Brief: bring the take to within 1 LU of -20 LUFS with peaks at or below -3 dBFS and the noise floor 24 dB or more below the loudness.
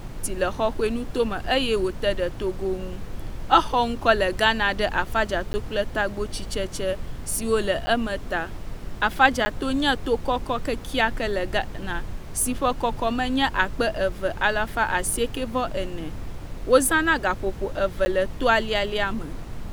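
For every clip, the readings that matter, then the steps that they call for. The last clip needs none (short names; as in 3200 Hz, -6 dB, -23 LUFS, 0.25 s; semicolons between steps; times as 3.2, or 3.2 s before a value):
dropouts 4; longest dropout 10 ms; noise floor -36 dBFS; noise floor target -48 dBFS; loudness -24.0 LUFS; peak -2.0 dBFS; loudness target -20.0 LUFS
-> interpolate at 5.53/7.86/9.45/18.05, 10 ms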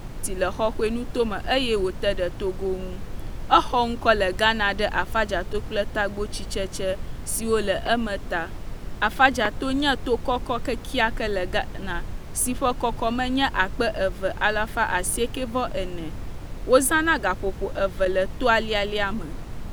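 dropouts 0; noise floor -36 dBFS; noise floor target -48 dBFS
-> noise print and reduce 12 dB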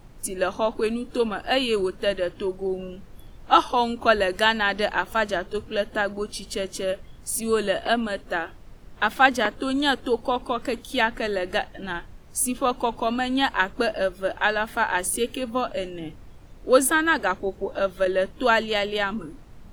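noise floor -46 dBFS; noise floor target -48 dBFS
-> noise print and reduce 6 dB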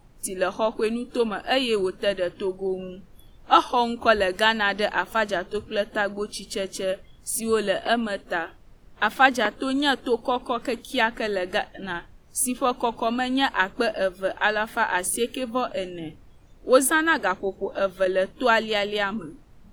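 noise floor -51 dBFS; loudness -24.0 LUFS; peak -2.5 dBFS; loudness target -20.0 LUFS
-> gain +4 dB; limiter -3 dBFS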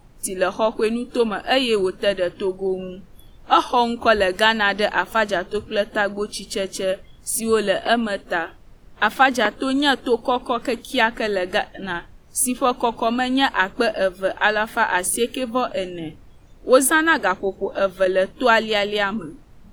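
loudness -20.5 LUFS; peak -3.0 dBFS; noise floor -47 dBFS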